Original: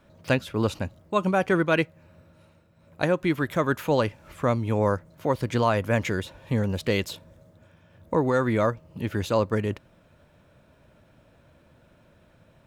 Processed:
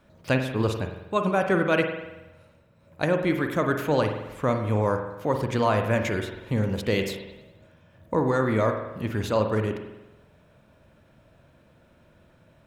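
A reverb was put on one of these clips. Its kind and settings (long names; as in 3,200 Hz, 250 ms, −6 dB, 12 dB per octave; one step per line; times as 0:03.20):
spring reverb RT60 1 s, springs 46 ms, chirp 60 ms, DRR 5 dB
level −1 dB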